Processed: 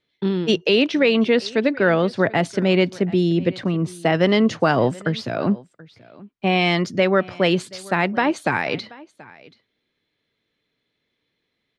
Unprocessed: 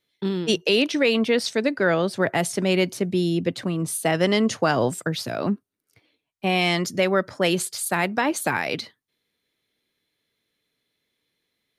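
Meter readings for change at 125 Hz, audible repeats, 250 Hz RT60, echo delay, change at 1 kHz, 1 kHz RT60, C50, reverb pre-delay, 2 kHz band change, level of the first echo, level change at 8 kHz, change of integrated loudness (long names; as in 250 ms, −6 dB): +4.0 dB, 1, no reverb audible, 731 ms, +3.0 dB, no reverb audible, no reverb audible, no reverb audible, +2.5 dB, −22.0 dB, −10.5 dB, +3.0 dB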